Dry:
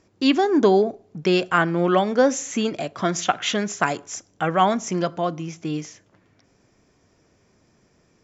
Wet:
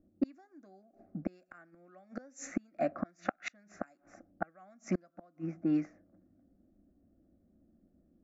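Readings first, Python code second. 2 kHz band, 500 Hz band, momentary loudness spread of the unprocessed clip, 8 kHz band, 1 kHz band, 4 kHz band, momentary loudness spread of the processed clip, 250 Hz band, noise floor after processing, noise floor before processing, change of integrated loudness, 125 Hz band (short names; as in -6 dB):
-20.5 dB, -21.0 dB, 12 LU, n/a, -22.5 dB, -30.5 dB, 23 LU, -14.0 dB, -72 dBFS, -62 dBFS, -17.0 dB, -16.0 dB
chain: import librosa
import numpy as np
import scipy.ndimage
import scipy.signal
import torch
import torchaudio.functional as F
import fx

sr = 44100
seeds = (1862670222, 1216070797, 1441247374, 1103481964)

y = fx.env_lowpass(x, sr, base_hz=330.0, full_db=-16.5)
y = fx.gate_flip(y, sr, shuts_db=-16.0, range_db=-36)
y = fx.fixed_phaser(y, sr, hz=640.0, stages=8)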